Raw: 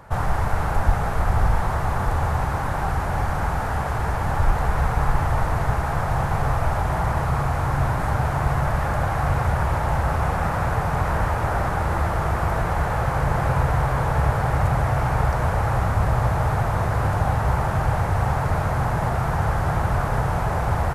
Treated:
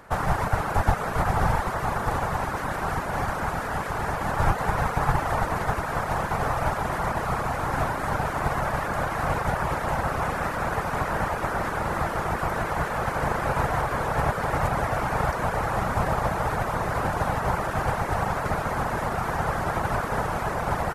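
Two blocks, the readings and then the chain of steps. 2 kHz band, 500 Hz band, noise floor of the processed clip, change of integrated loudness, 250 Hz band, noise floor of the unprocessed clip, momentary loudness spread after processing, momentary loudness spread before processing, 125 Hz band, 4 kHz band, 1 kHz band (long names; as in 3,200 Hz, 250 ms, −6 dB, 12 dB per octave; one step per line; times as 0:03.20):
0.0 dB, −0.5 dB, −30 dBFS, −3.5 dB, −2.5 dB, −25 dBFS, 3 LU, 3 LU, −8.0 dB, 0.0 dB, −1.0 dB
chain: ceiling on every frequency bin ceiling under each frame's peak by 13 dB
reverb reduction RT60 0.62 s
level −3 dB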